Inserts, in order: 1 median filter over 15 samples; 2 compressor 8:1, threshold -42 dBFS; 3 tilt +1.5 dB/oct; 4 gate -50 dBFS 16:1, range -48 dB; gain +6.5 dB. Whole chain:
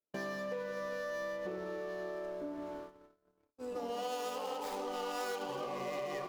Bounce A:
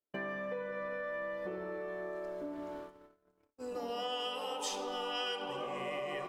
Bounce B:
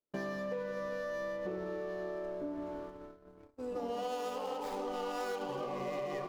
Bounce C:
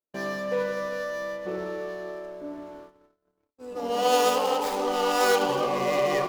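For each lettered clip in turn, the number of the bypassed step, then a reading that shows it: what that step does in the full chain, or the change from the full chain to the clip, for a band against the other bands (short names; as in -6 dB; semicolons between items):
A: 1, 4 kHz band +8.5 dB; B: 3, 8 kHz band -5.0 dB; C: 2, crest factor change +3.5 dB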